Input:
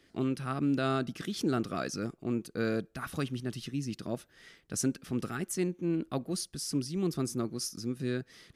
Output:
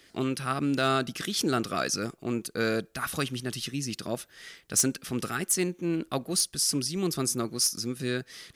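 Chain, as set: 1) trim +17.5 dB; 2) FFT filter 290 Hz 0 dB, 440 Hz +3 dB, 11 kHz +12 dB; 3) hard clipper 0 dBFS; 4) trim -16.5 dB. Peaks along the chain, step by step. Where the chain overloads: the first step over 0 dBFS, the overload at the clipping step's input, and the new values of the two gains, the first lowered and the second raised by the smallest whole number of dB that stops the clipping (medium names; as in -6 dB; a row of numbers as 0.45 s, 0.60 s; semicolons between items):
-2.0 dBFS, +7.0 dBFS, 0.0 dBFS, -16.5 dBFS; step 2, 7.0 dB; step 1 +10.5 dB, step 4 -9.5 dB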